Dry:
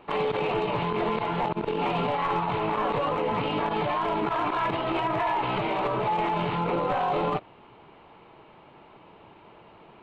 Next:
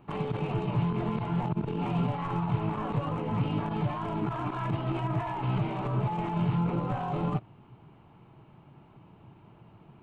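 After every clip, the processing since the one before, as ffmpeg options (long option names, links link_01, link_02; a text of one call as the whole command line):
ffmpeg -i in.wav -af "equalizer=frequency=125:width_type=o:width=1:gain=10,equalizer=frequency=500:width_type=o:width=1:gain=-10,equalizer=frequency=1000:width_type=o:width=1:gain=-5,equalizer=frequency=2000:width_type=o:width=1:gain=-8,equalizer=frequency=4000:width_type=o:width=1:gain=-11" out.wav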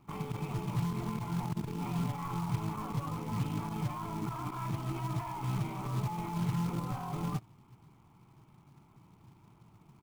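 ffmpeg -i in.wav -af "aecho=1:1:0.9:0.47,acrusher=bits=4:mode=log:mix=0:aa=0.000001,volume=-7.5dB" out.wav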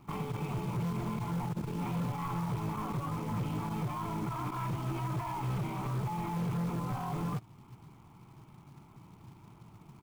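ffmpeg -i in.wav -filter_complex "[0:a]asplit=2[link_01][link_02];[link_02]acompressor=threshold=-42dB:ratio=6,volume=-1.5dB[link_03];[link_01][link_03]amix=inputs=2:normalize=0,volume=30dB,asoftclip=hard,volume=-30dB" out.wav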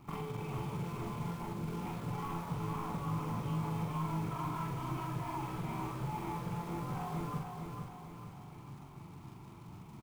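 ffmpeg -i in.wav -filter_complex "[0:a]acompressor=threshold=-40dB:ratio=3,asplit=2[link_01][link_02];[link_02]adelay=44,volume=-3dB[link_03];[link_01][link_03]amix=inputs=2:normalize=0,aecho=1:1:452|904|1356|1808|2260|2712:0.562|0.276|0.135|0.0662|0.0324|0.0159" out.wav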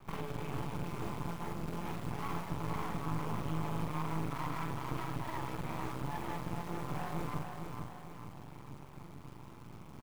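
ffmpeg -i in.wav -af "aeval=exprs='max(val(0),0)':channel_layout=same,volume=4dB" out.wav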